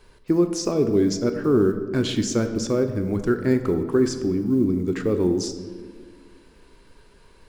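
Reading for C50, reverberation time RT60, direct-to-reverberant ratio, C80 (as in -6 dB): 9.5 dB, 1.6 s, 7.0 dB, 11.0 dB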